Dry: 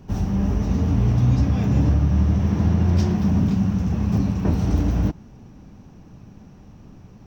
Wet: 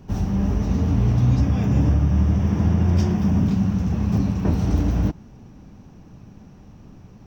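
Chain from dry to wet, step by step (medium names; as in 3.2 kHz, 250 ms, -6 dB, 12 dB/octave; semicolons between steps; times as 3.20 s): 1.40–3.46 s: band-stop 4.1 kHz, Q 6.2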